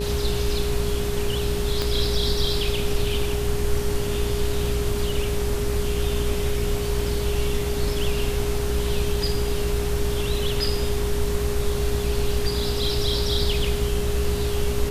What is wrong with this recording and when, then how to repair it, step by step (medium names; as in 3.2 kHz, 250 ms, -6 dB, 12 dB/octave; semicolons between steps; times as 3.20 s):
buzz 60 Hz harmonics 31 -28 dBFS
whine 410 Hz -27 dBFS
1.82 s: pop -10 dBFS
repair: de-click; de-hum 60 Hz, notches 31; band-stop 410 Hz, Q 30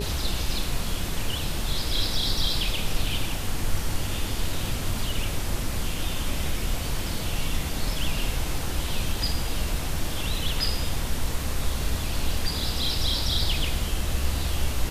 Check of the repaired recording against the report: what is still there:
1.82 s: pop